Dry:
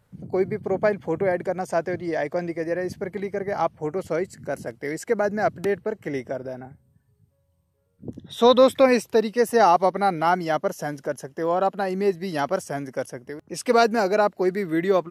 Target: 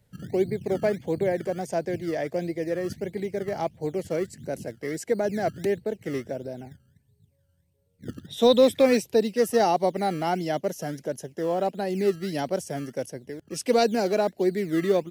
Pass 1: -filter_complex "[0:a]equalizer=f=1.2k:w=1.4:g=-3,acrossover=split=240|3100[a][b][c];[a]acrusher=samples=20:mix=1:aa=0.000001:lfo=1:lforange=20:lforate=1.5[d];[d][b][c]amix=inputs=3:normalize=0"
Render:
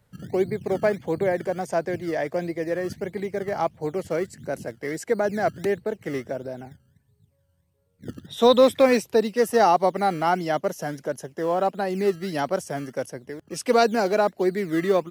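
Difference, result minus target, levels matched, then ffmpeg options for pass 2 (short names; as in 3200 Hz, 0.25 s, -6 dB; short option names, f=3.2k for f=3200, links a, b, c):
1000 Hz band +3.0 dB
-filter_complex "[0:a]equalizer=f=1.2k:w=1.4:g=-14,acrossover=split=240|3100[a][b][c];[a]acrusher=samples=20:mix=1:aa=0.000001:lfo=1:lforange=20:lforate=1.5[d];[d][b][c]amix=inputs=3:normalize=0"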